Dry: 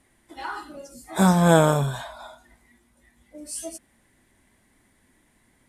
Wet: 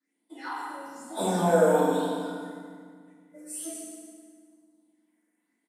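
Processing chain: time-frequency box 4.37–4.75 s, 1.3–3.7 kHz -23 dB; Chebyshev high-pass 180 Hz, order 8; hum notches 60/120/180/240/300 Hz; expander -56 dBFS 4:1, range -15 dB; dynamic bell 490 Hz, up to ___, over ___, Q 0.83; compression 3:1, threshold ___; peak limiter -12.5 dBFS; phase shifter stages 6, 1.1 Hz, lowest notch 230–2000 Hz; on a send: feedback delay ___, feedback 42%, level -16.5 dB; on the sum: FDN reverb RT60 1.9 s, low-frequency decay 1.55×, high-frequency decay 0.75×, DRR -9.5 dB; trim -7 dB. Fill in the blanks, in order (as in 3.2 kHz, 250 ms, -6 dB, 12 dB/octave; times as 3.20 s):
+7 dB, -33 dBFS, -18 dBFS, 68 ms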